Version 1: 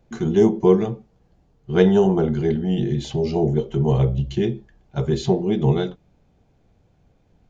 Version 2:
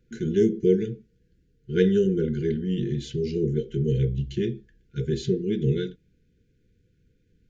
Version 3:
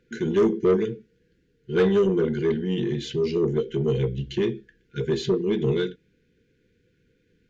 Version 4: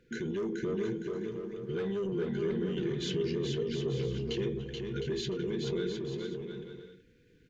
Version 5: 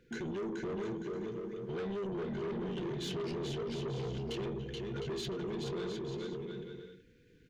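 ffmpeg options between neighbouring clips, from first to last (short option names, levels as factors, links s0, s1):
-af "afftfilt=real='re*(1-between(b*sr/4096,520,1400))':imag='im*(1-between(b*sr/4096,520,1400))':win_size=4096:overlap=0.75,volume=0.562"
-filter_complex "[0:a]asplit=2[s0][s1];[s1]highpass=f=720:p=1,volume=10,asoftclip=type=tanh:threshold=0.447[s2];[s0][s2]amix=inputs=2:normalize=0,lowpass=f=2100:p=1,volume=0.501,volume=0.708"
-af "acompressor=threshold=0.0501:ratio=6,alimiter=level_in=1.58:limit=0.0631:level=0:latency=1,volume=0.631,aecho=1:1:430|709.5|891.2|1009|1086:0.631|0.398|0.251|0.158|0.1"
-af "asoftclip=type=tanh:threshold=0.02"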